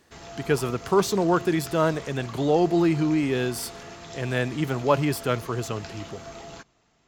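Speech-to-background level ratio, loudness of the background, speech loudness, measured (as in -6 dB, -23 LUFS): 16.0 dB, -41.0 LUFS, -25.0 LUFS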